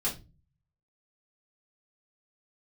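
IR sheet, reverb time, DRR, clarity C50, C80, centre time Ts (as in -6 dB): 0.30 s, -7.5 dB, 11.0 dB, 19.0 dB, 20 ms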